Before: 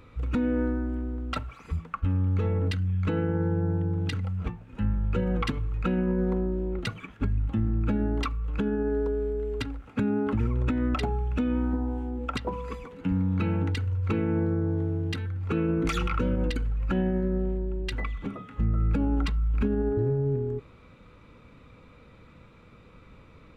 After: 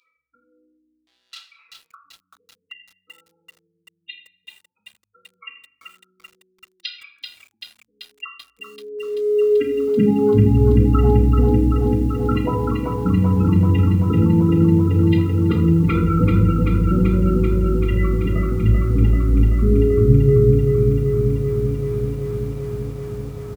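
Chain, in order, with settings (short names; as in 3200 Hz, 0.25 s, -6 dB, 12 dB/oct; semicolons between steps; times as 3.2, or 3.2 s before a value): doubler 17 ms -11 dB; in parallel at -7 dB: sine folder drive 5 dB, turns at -13.5 dBFS; on the sum: spectral gate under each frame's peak -15 dB strong; 1.07–1.93 hard clip -29 dBFS, distortion -24 dB; high-pass sweep 3700 Hz -> 86 Hz, 8.06–10.45; shoebox room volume 110 m³, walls mixed, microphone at 0.68 m; lo-fi delay 0.386 s, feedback 80%, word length 8-bit, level -4 dB; gain -1.5 dB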